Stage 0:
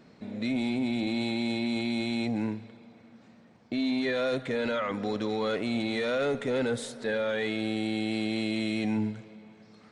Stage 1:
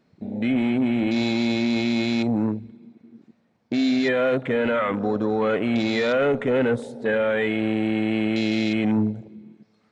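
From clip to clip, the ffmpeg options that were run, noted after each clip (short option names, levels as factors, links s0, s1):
-af "afwtdn=0.0112,volume=2.37"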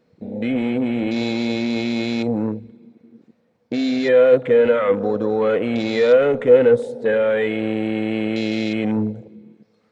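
-af "equalizer=f=490:w=7.1:g=14.5"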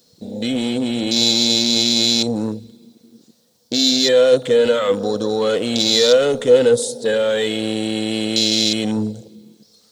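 -af "aexciter=amount=7.9:drive=9.3:freq=3500"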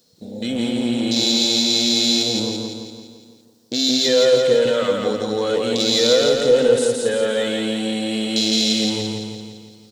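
-af "aecho=1:1:169|338|507|676|845|1014|1183:0.708|0.375|0.199|0.105|0.0559|0.0296|0.0157,volume=0.668"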